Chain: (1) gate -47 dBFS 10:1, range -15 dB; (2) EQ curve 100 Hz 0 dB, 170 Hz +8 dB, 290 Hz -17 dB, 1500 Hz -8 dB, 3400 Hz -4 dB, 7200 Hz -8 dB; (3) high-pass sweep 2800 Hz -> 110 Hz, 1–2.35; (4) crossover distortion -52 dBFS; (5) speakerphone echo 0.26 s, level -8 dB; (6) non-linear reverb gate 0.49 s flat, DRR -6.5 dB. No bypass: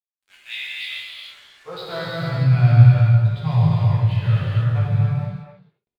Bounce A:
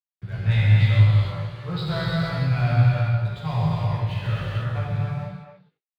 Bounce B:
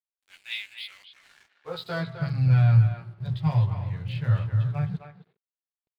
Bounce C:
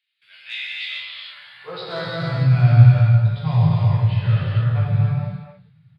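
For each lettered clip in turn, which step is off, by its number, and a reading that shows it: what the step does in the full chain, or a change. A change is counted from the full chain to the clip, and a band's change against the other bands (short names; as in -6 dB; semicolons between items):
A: 3, momentary loudness spread change -9 LU; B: 6, momentary loudness spread change -3 LU; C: 4, distortion -30 dB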